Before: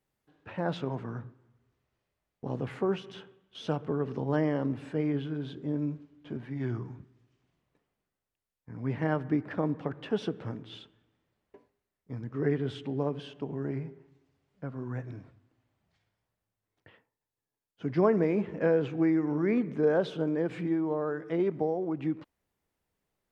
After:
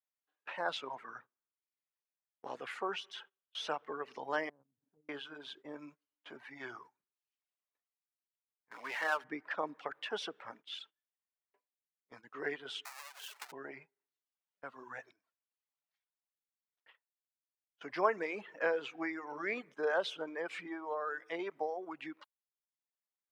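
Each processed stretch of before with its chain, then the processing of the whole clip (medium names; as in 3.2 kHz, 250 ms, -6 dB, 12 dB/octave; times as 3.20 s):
4.49–5.09 s: band-pass filter 110 Hz, Q 0.94 + tilt EQ -3.5 dB/octave + compression 10:1, threshold -34 dBFS
8.71–9.24 s: high-pass 880 Hz 6 dB/octave + power-law waveshaper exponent 0.7
12.85–13.52 s: square wave that keeps the level + high-pass 780 Hz + compression 8:1, threshold -44 dBFS
whole clip: reverb removal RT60 0.96 s; high-pass 920 Hz 12 dB/octave; gate -59 dBFS, range -18 dB; trim +4 dB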